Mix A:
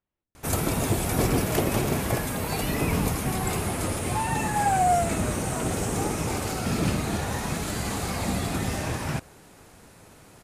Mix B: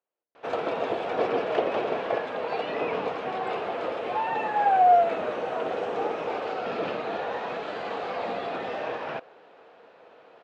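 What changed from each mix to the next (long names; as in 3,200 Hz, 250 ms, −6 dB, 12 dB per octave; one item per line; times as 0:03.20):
master: add loudspeaker in its box 470–3,200 Hz, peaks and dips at 480 Hz +9 dB, 680 Hz +5 dB, 2,100 Hz −5 dB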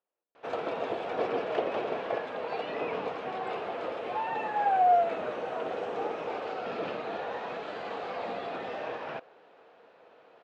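background −4.5 dB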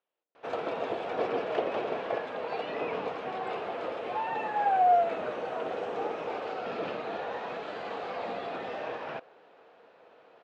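speech: remove high-frequency loss of the air 440 metres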